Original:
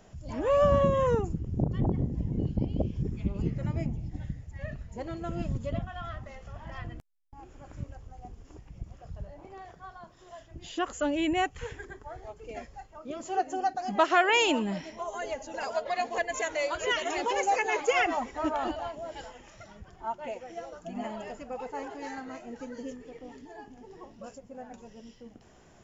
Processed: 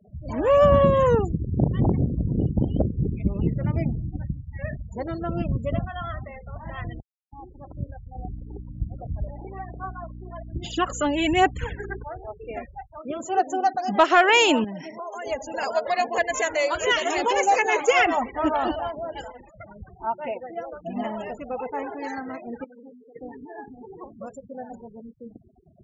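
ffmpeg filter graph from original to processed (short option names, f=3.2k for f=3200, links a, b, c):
-filter_complex "[0:a]asettb=1/sr,asplit=3[a][b][c];[a]atrim=end=8.154[d];[b]atrim=start=8.15:end=12.04,asetpts=PTS-STARTPTS,afade=t=in:d=0.004:c=qsin,afade=t=out:st=3.886:d=0.004:c=qsin,aphaser=in_gain=1:out_gain=1:delay=2.5:decay=0.52:speed=1.2:type=sinusoidal,aeval=exprs='val(0)+0.00631*(sin(2*PI*60*n/s)+sin(2*PI*2*60*n/s)/2+sin(2*PI*3*60*n/s)/3+sin(2*PI*4*60*n/s)/4+sin(2*PI*5*60*n/s)/5)':c=same[e];[c]atrim=start=12.036[f];[d][e]acrossfade=d=0.004:c1=hsin:c2=qsin[g];[g][f]acrossfade=d=0.004:c1=qsin:c2=hsin,asettb=1/sr,asplit=3[h][i][j];[h]atrim=end=14.644[k];[i]atrim=start=14.64:end=15.26,asetpts=PTS-STARTPTS,afade=t=in:d=0.004:c=qsin,afade=t=out:st=0.616:d=0.004:c=qsin,highpass=f=110:w=0.5412,highpass=f=110:w=1.3066,acompressor=threshold=-38dB:ratio=4:attack=3.2:release=140:knee=1:detection=peak[l];[j]atrim=start=15.256[m];[k][l]acrossfade=d=0.004:c1=hsin:c2=qsin[n];[n][m]acrossfade=d=0.004:c1=qsin:c2=hsin,asettb=1/sr,asplit=3[o][p][q];[o]atrim=end=22.644[r];[p]atrim=start=22.64:end=23.16,asetpts=PTS-STARTPTS,afade=t=in:d=0.004:c=qsin,afade=t=out:st=0.516:d=0.004:c=qsin,aeval=exprs='if(lt(val(0),0),0.251*val(0),val(0))':c=same,bandreject=f=60:t=h:w=6,bandreject=f=120:t=h:w=6,bandreject=f=180:t=h:w=6,bandreject=f=240:t=h:w=6,bandreject=f=300:t=h:w=6,bandreject=f=360:t=h:w=6,aeval=exprs='(tanh(112*val(0)+0.65)-tanh(0.65))/112':c=same[s];[q]atrim=start=23.156[t];[r][s]acrossfade=d=0.004:c1=hsin:c2=qsin[u];[u][t]acrossfade=d=0.004:c1=qsin:c2=hsin,highpass=40,afftfilt=real='re*gte(hypot(re,im),0.00631)':imag='im*gte(hypot(re,im),0.00631)':win_size=1024:overlap=0.75,acontrast=76"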